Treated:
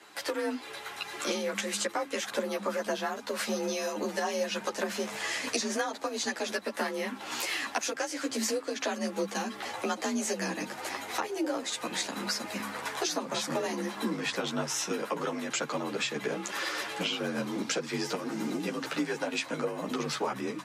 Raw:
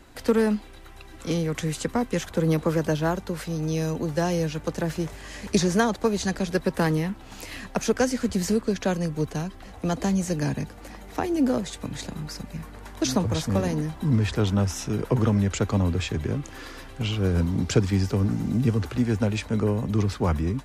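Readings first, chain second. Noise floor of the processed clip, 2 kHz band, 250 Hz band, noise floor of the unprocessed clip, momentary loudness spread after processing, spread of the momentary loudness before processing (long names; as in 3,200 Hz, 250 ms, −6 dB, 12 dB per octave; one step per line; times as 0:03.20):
−44 dBFS, +1.0 dB, −10.0 dB, −44 dBFS, 3 LU, 11 LU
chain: high-shelf EQ 11,000 Hz +4 dB
automatic gain control gain up to 9 dB
meter weighting curve A
frequency shifter +46 Hz
downward compressor 6 to 1, threshold −31 dBFS, peak gain reduction 17 dB
hum removal 68.12 Hz, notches 5
string-ensemble chorus
level +5 dB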